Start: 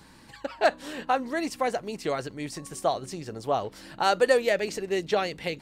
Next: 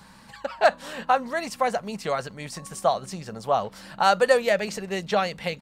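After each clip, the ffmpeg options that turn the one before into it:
-af "firequalizer=gain_entry='entry(130,0);entry(200,7);entry(300,-9);entry(530,3);entry(1200,6);entry(1900,2)':delay=0.05:min_phase=1"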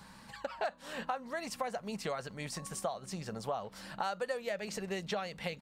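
-af "acompressor=threshold=-30dB:ratio=5,volume=-4dB"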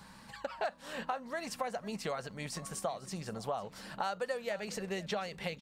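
-af "aecho=1:1:500:0.126"

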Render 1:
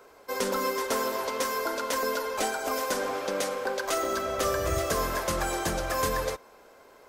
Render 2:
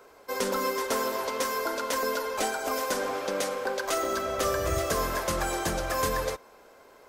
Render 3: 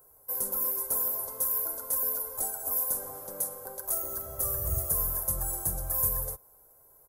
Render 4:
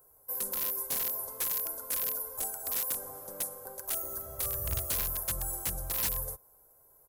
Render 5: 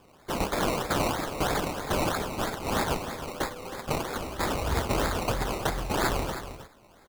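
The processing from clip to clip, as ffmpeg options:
-af anull
-af "firequalizer=gain_entry='entry(140,0);entry(210,-16);entry(800,-12);entry(2500,-30);entry(11000,14)':delay=0.05:min_phase=1"
-af "aeval=exprs='(mod(10*val(0)+1,2)-1)/10':c=same,volume=-3dB"
-af "acrusher=samples=21:mix=1:aa=0.000001:lfo=1:lforange=12.6:lforate=3.1,aecho=1:1:316:0.282,volume=5dB"

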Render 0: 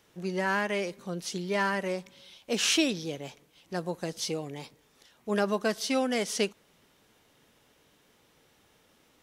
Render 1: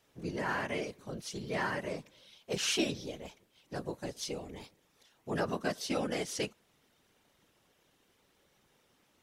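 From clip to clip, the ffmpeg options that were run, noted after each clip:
-af "afftfilt=real='hypot(re,im)*cos(2*PI*random(0))':imag='hypot(re,im)*sin(2*PI*random(1))':win_size=512:overlap=0.75"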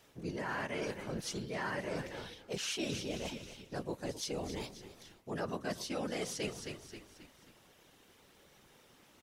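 -filter_complex "[0:a]asplit=5[a][b][c][d][e];[b]adelay=267,afreqshift=-46,volume=-16dB[f];[c]adelay=534,afreqshift=-92,volume=-23.1dB[g];[d]adelay=801,afreqshift=-138,volume=-30.3dB[h];[e]adelay=1068,afreqshift=-184,volume=-37.4dB[i];[a][f][g][h][i]amix=inputs=5:normalize=0,areverse,acompressor=threshold=-43dB:ratio=5,areverse,volume=7dB"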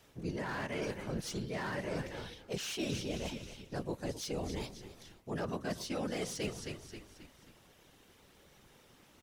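-filter_complex "[0:a]lowshelf=f=140:g=6.5,acrossover=split=570[a][b];[b]asoftclip=type=hard:threshold=-37dB[c];[a][c]amix=inputs=2:normalize=0"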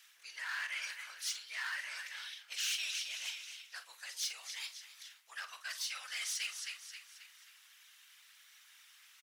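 -filter_complex "[0:a]highpass=f=1.5k:w=0.5412,highpass=f=1.5k:w=1.3066,asplit=2[a][b];[b]adelay=46,volume=-12dB[c];[a][c]amix=inputs=2:normalize=0,volume=5dB"

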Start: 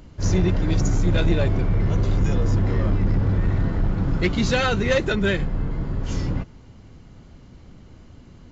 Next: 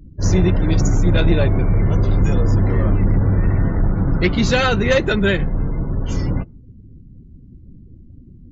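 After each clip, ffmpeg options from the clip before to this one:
-af "afftdn=nr=34:nf=-42,volume=4.5dB"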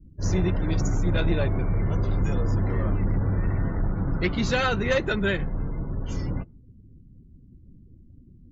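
-af "adynamicequalizer=threshold=0.0282:dfrequency=1200:dqfactor=0.8:tfrequency=1200:tqfactor=0.8:attack=5:release=100:ratio=0.375:range=1.5:mode=boostabove:tftype=bell,volume=-8.5dB"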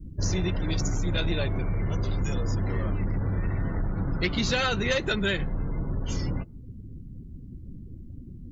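-filter_complex "[0:a]acrossover=split=2900|5800[a][b][c];[a]acompressor=threshold=-35dB:ratio=4[d];[b]acompressor=threshold=-39dB:ratio=4[e];[c]acompressor=threshold=-54dB:ratio=4[f];[d][e][f]amix=inputs=3:normalize=0,volume=8.5dB"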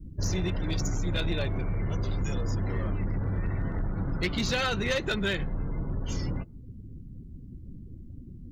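-af "aeval=exprs='clip(val(0),-1,0.0841)':c=same,volume=-2dB"

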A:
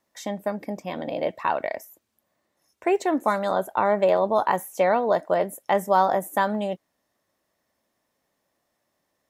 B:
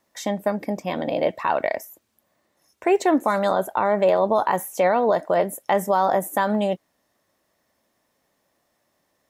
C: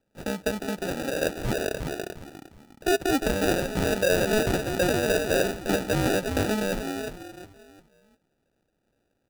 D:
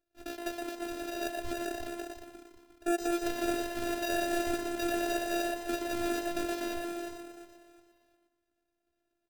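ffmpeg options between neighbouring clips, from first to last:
-af "alimiter=limit=-14.5dB:level=0:latency=1:release=65,volume=5dB"
-filter_complex "[0:a]asplit=5[a][b][c][d][e];[b]adelay=354,afreqshift=66,volume=-5.5dB[f];[c]adelay=708,afreqshift=132,volume=-15.1dB[g];[d]adelay=1062,afreqshift=198,volume=-24.8dB[h];[e]adelay=1416,afreqshift=264,volume=-34.4dB[i];[a][f][g][h][i]amix=inputs=5:normalize=0,acrusher=samples=41:mix=1:aa=0.000001,volume=-5dB"
-filter_complex "[0:a]asplit=2[a][b];[b]asplit=4[c][d][e][f];[c]adelay=119,afreqshift=94,volume=-5dB[g];[d]adelay=238,afreqshift=188,volume=-15.2dB[h];[e]adelay=357,afreqshift=282,volume=-25.3dB[i];[f]adelay=476,afreqshift=376,volume=-35.5dB[j];[g][h][i][j]amix=inputs=4:normalize=0[k];[a][k]amix=inputs=2:normalize=0,afftfilt=real='hypot(re,im)*cos(PI*b)':imag='0':win_size=512:overlap=0.75,volume=-5.5dB"

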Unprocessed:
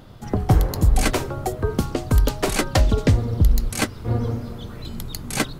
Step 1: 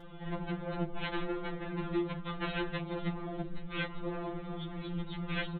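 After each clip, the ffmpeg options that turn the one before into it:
-af "acompressor=threshold=-18dB:ratio=2.5,aresample=8000,volume=28dB,asoftclip=hard,volume=-28dB,aresample=44100,afftfilt=real='re*2.83*eq(mod(b,8),0)':imag='im*2.83*eq(mod(b,8),0)':win_size=2048:overlap=0.75"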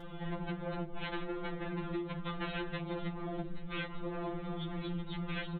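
-af "acompressor=threshold=-38dB:ratio=6,volume=3.5dB"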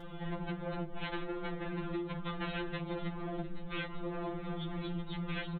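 -filter_complex "[0:a]asplit=2[a][b];[b]adelay=699.7,volume=-15dB,highshelf=f=4k:g=-15.7[c];[a][c]amix=inputs=2:normalize=0"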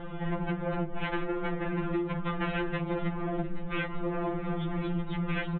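-af "lowpass=f=2.8k:w=0.5412,lowpass=f=2.8k:w=1.3066,volume=7dB"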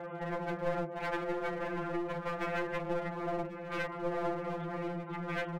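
-af "highpass=f=160:w=0.5412,highpass=f=160:w=1.3066,equalizer=f=190:t=q:w=4:g=-9,equalizer=f=290:t=q:w=4:g=-8,equalizer=f=580:t=q:w=4:g=9,lowpass=f=2.3k:w=0.5412,lowpass=f=2.3k:w=1.3066,aeval=exprs='clip(val(0),-1,0.0141)':c=same,aecho=1:1:1090:0.15"

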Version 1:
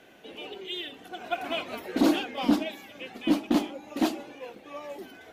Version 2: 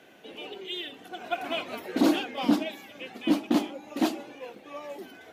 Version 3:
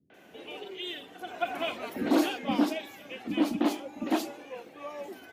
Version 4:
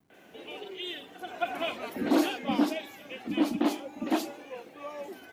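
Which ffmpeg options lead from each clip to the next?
-af "highpass=92"
-filter_complex "[0:a]acrossover=split=220|3700[a][b][c];[b]adelay=100[d];[c]adelay=140[e];[a][d][e]amix=inputs=3:normalize=0"
-af "acrusher=bits=11:mix=0:aa=0.000001"

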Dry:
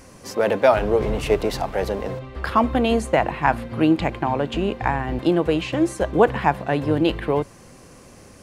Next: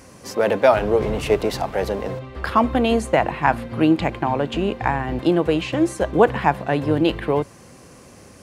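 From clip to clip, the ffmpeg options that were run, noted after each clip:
-af "highpass=55,volume=1dB"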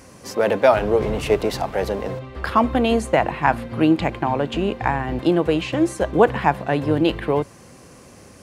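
-af anull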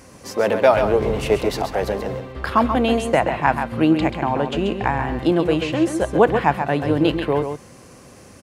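-af "aecho=1:1:134:0.422"

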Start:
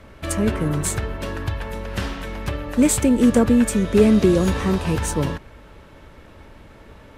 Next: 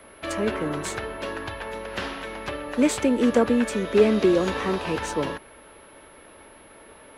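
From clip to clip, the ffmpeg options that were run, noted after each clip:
-filter_complex "[0:a]aeval=exprs='val(0)+0.01*sin(2*PI*11000*n/s)':c=same,acrossover=split=270 5600:gain=0.158 1 0.158[a][b][c];[a][b][c]amix=inputs=3:normalize=0"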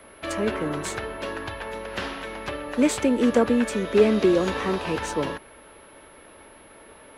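-af anull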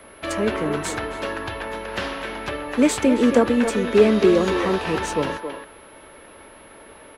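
-filter_complex "[0:a]asplit=2[a][b];[b]adelay=270,highpass=300,lowpass=3.4k,asoftclip=type=hard:threshold=-15.5dB,volume=-7dB[c];[a][c]amix=inputs=2:normalize=0,volume=3dB"

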